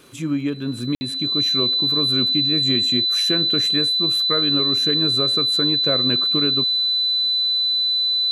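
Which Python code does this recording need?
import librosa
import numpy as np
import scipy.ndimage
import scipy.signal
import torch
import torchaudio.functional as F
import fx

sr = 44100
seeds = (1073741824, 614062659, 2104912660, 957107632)

y = fx.fix_declick_ar(x, sr, threshold=6.5)
y = fx.notch(y, sr, hz=4000.0, q=30.0)
y = fx.fix_ambience(y, sr, seeds[0], print_start_s=0.0, print_end_s=0.5, start_s=0.95, end_s=1.01)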